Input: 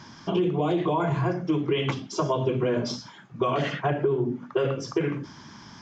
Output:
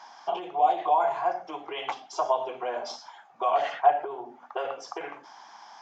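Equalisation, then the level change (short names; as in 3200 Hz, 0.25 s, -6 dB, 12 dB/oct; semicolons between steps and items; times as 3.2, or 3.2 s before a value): resonant high-pass 760 Hz, resonance Q 8.4; -5.5 dB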